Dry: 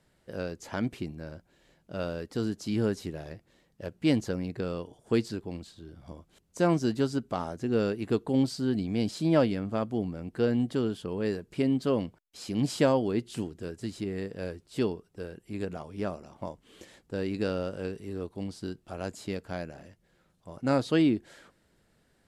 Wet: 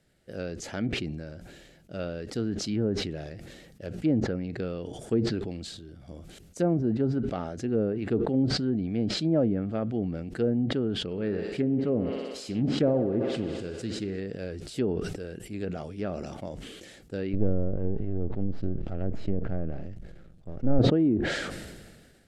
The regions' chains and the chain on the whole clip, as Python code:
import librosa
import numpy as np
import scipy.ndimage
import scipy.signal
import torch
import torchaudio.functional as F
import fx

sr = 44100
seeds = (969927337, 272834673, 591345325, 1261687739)

y = fx.chain(x, sr, fx.echo_thinned(ms=62, feedback_pct=84, hz=190.0, wet_db=-11.5),
    fx.doppler_dist(depth_ms=0.12), at=(11.03, 14.2))
y = fx.chain(y, sr, fx.halfwave_gain(db=-12.0),
    fx.tilt_eq(slope=-3.0), at=(17.33, 20.79))
y = fx.env_lowpass_down(y, sr, base_hz=770.0, full_db=-22.0)
y = fx.peak_eq(y, sr, hz=1000.0, db=-12.5, octaves=0.41)
y = fx.sustainer(y, sr, db_per_s=35.0)